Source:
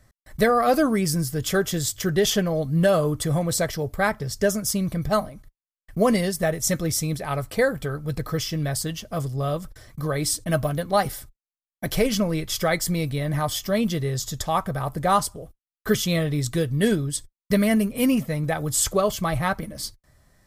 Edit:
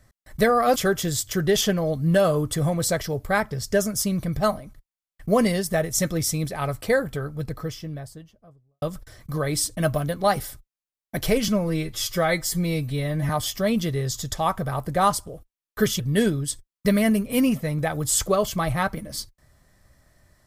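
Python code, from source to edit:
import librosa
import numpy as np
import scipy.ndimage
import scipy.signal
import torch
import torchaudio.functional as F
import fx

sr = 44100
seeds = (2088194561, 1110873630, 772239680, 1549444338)

y = fx.studio_fade_out(x, sr, start_s=7.52, length_s=1.99)
y = fx.edit(y, sr, fx.cut(start_s=0.76, length_s=0.69),
    fx.stretch_span(start_s=12.17, length_s=1.21, factor=1.5),
    fx.cut(start_s=16.08, length_s=0.57), tone=tone)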